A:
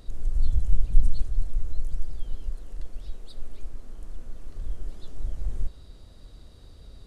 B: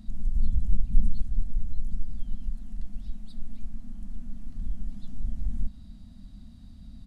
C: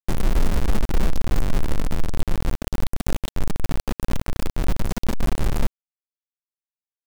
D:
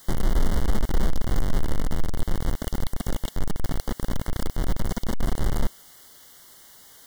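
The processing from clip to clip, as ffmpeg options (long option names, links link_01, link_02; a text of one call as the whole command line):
ffmpeg -i in.wav -filter_complex "[0:a]firequalizer=gain_entry='entry(140,0);entry(210,15);entry(420,-28);entry(660,-7);entry(1200,-10);entry(1800,-7)':delay=0.05:min_phase=1,asplit=2[link_01][link_02];[link_02]acompressor=threshold=-22dB:ratio=6,volume=-3dB[link_03];[link_01][link_03]amix=inputs=2:normalize=0,volume=-4dB" out.wav
ffmpeg -i in.wav -af "alimiter=limit=-19dB:level=0:latency=1:release=21,acrusher=bits=4:mix=0:aa=0.000001,volume=6.5dB" out.wav
ffmpeg -i in.wav -af "aeval=exprs='val(0)+0.5*0.0178*sgn(val(0))':channel_layout=same,asuperstop=centerf=2500:order=20:qfactor=4,volume=-2.5dB" out.wav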